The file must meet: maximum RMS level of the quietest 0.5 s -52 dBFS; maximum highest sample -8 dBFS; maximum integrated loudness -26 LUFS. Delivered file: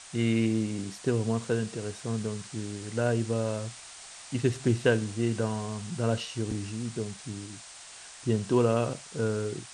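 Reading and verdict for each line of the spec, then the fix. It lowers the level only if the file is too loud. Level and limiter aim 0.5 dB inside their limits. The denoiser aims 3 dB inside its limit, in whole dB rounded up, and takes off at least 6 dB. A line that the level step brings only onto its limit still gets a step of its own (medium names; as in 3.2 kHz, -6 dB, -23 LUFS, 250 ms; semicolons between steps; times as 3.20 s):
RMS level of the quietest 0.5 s -47 dBFS: fail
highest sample -9.5 dBFS: pass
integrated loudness -30.0 LUFS: pass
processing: noise reduction 8 dB, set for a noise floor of -47 dBFS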